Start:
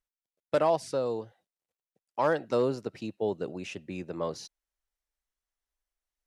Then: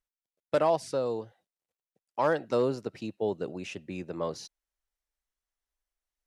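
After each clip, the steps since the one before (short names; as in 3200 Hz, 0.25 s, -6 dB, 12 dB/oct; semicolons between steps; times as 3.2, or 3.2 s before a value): nothing audible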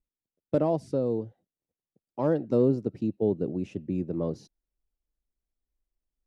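EQ curve 290 Hz 0 dB, 950 Hz -17 dB, 1600 Hz -21 dB; gain +9 dB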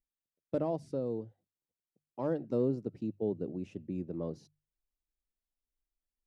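notches 50/100/150 Hz; gain -7.5 dB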